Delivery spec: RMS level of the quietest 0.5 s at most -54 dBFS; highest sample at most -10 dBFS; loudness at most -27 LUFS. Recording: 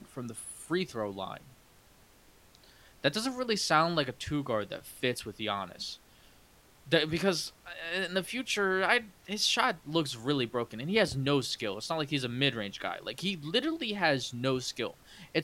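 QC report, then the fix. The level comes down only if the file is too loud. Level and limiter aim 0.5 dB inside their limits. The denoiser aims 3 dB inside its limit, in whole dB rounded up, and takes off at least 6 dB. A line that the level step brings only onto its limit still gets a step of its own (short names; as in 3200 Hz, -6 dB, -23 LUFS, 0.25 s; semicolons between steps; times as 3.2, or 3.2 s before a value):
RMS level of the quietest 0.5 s -60 dBFS: OK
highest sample -10.5 dBFS: OK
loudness -31.5 LUFS: OK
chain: none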